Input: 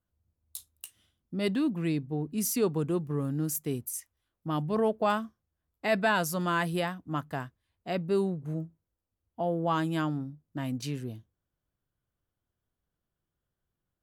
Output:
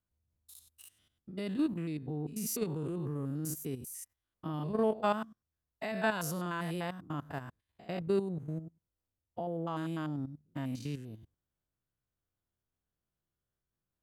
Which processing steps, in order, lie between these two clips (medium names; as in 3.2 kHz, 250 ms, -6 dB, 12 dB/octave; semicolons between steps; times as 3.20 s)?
spectrogram pixelated in time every 100 ms; level held to a coarse grid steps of 9 dB